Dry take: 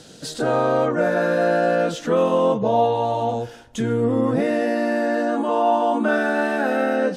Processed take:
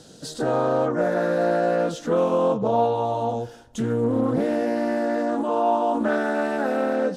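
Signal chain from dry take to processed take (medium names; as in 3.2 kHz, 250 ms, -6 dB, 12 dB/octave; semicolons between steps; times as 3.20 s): peaking EQ 2.3 kHz -7 dB 1.1 oct; loudspeaker Doppler distortion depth 0.25 ms; trim -2 dB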